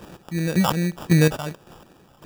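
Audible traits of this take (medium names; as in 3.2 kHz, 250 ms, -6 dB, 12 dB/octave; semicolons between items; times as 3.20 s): phasing stages 4, 2.7 Hz, lowest notch 350–3600 Hz; aliases and images of a low sample rate 2.1 kHz, jitter 0%; chopped level 1.8 Hz, depth 65%, duty 30%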